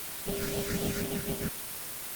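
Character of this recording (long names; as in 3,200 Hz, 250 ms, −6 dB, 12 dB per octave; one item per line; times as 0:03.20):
aliases and images of a low sample rate 1,000 Hz, jitter 20%
phaser sweep stages 6, 3.9 Hz, lowest notch 790–1,800 Hz
a quantiser's noise floor 6 bits, dither triangular
Opus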